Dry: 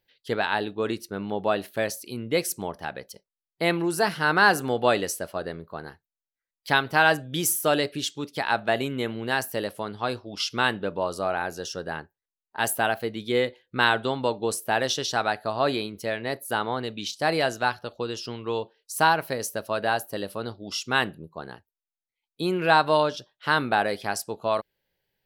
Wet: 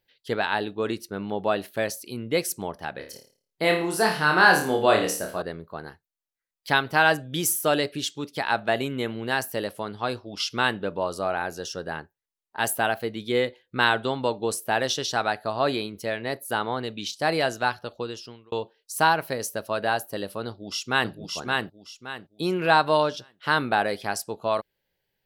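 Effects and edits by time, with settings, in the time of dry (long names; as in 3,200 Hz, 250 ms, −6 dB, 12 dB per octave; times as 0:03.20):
0:02.94–0:05.42: flutter between parallel walls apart 4.7 metres, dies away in 0.41 s
0:17.95–0:18.52: fade out
0:20.47–0:21.12: delay throw 570 ms, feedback 30%, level −2.5 dB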